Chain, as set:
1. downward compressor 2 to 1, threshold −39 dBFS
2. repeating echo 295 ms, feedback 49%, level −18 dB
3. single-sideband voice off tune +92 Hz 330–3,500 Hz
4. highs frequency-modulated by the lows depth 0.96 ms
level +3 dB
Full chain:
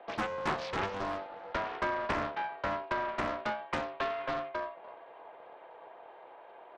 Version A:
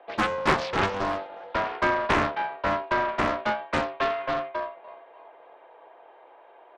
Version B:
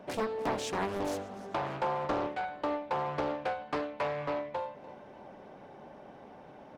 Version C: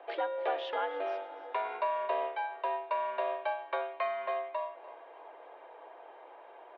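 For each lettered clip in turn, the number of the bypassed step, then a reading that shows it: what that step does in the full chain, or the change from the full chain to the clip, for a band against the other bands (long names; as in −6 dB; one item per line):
1, average gain reduction 4.5 dB
3, 2 kHz band −7.0 dB
4, 500 Hz band +6.0 dB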